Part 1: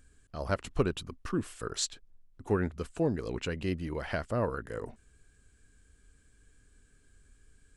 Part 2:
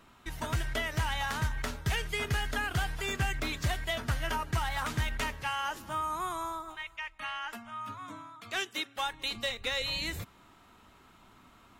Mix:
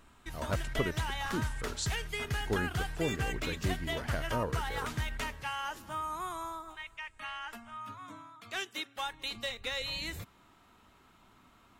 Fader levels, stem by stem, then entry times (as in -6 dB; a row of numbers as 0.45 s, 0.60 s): -4.5 dB, -3.5 dB; 0.00 s, 0.00 s